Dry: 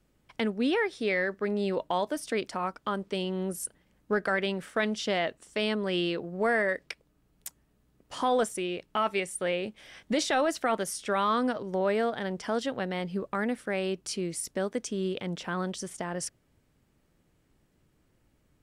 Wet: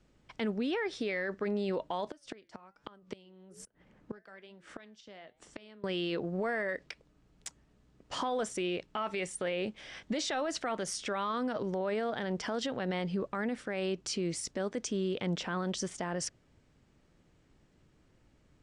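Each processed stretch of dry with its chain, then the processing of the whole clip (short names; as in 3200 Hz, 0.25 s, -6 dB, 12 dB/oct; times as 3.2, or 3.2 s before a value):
2.08–5.84 flange 1.2 Hz, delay 6.6 ms, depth 3.9 ms, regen -80% + flipped gate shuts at -29 dBFS, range -24 dB + three-band squash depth 40%
whole clip: LPF 7600 Hz 24 dB/oct; limiter -28 dBFS; gain +2.5 dB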